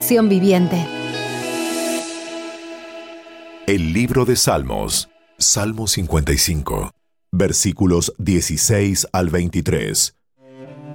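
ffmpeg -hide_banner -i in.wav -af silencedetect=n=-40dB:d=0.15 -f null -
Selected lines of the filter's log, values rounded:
silence_start: 5.06
silence_end: 5.39 | silence_duration: 0.33
silence_start: 6.90
silence_end: 7.33 | silence_duration: 0.43
silence_start: 10.09
silence_end: 10.44 | silence_duration: 0.35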